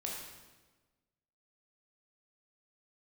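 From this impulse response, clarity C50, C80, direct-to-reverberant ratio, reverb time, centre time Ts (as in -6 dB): 1.5 dB, 3.5 dB, -3.0 dB, 1.3 s, 65 ms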